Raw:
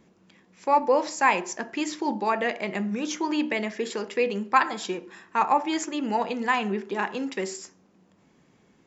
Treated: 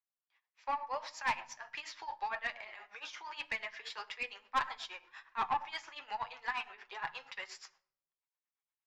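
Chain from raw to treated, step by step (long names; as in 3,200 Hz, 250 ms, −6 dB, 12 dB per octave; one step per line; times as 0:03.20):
high-pass filter 840 Hz 24 dB per octave
downward expander −51 dBFS
low-pass filter 5,000 Hz 24 dB per octave
in parallel at +1 dB: downward compressor, threshold −38 dBFS, peak gain reduction 20.5 dB
on the sum: amplitude tremolo 8.5 Hz, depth 86%
flanger 1.7 Hz, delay 6 ms, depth 3.6 ms, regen +26%
tube saturation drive 22 dB, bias 0.3
on a send at −19 dB: convolution reverb RT60 0.70 s, pre-delay 18 ms
on the sum: level −2.5 dB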